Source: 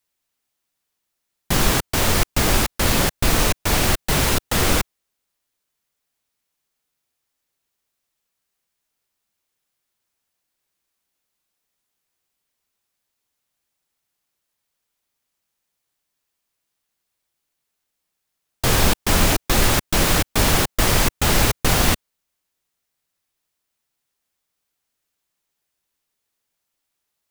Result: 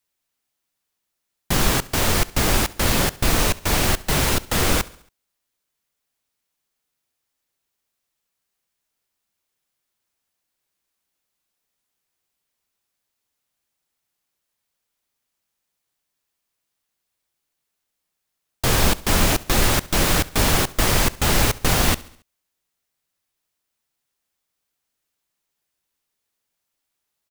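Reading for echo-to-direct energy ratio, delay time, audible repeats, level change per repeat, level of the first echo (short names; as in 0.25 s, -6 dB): -19.5 dB, 69 ms, 3, -6.0 dB, -21.0 dB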